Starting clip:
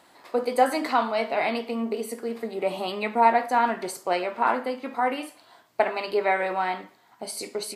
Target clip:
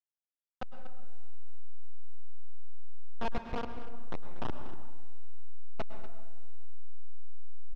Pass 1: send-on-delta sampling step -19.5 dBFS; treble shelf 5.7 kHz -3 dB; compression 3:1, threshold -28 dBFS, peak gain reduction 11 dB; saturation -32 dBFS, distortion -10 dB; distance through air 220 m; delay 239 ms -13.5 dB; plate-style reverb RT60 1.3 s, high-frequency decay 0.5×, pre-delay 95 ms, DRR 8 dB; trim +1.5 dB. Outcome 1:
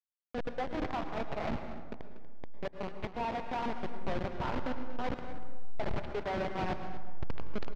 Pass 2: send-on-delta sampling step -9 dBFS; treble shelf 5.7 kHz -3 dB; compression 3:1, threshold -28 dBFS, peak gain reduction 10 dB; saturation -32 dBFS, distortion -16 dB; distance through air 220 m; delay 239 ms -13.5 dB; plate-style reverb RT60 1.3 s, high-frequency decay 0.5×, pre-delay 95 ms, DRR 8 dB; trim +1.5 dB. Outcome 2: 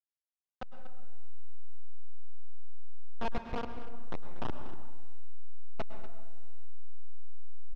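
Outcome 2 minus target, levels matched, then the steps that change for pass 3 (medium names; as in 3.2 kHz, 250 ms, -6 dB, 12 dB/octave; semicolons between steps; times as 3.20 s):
compression: peak gain reduction +10 dB
remove: compression 3:1, threshold -28 dBFS, peak gain reduction 10 dB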